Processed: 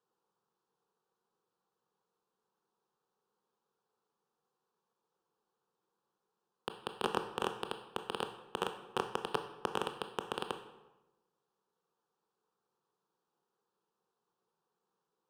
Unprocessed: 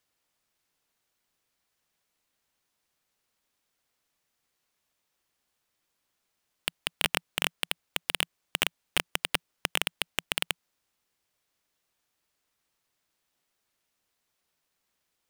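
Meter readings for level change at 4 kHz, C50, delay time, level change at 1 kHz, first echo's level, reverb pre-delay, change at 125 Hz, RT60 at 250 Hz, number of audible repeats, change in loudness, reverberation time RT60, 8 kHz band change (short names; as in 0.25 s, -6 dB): -13.5 dB, 9.5 dB, none, +1.5 dB, none, 18 ms, -4.0 dB, 1.1 s, none, -8.5 dB, 1.1 s, -17.5 dB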